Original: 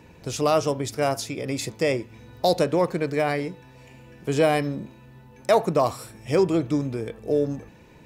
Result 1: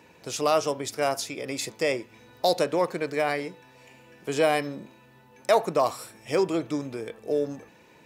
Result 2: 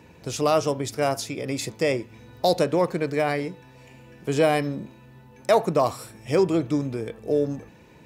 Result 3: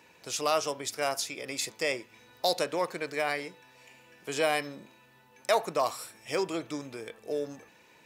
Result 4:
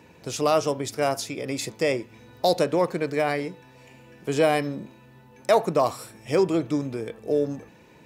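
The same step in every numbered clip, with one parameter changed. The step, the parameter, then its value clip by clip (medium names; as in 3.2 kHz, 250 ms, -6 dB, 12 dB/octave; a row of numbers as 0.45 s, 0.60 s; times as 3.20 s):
high-pass, cutoff frequency: 460 Hz, 66 Hz, 1.3 kHz, 180 Hz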